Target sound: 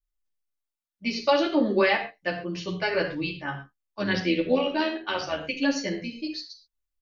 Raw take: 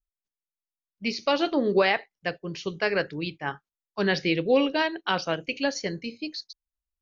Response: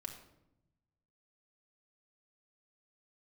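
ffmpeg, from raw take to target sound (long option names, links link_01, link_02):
-filter_complex "[0:a]asettb=1/sr,asplit=3[link_01][link_02][link_03];[link_01]atrim=end=3.374[link_04];[link_02]atrim=start=3.37:end=5.41,asetpts=PTS-STARTPTS,afade=type=in:duration=0.004:curve=qsin,afade=type=out:start_time=2.036:duration=0.004:curve=qsin,tremolo=f=85:d=0.462[link_05];[link_03]atrim=start=5.406[link_06];[link_04][link_05]acrossfade=duration=0.004:curve1=hsin:curve2=qsin[link_07];[link_07][link_06]acrossfade=duration=0.004:curve1=qsin:curve2=hsin[link_08];[1:a]atrim=start_sample=2205,atrim=end_sample=6174[link_09];[link_08][link_09]afir=irnorm=-1:irlink=0,asplit=2[link_10][link_11];[link_11]adelay=10.6,afreqshift=-0.58[link_12];[link_10][link_12]amix=inputs=2:normalize=1,volume=6.5dB"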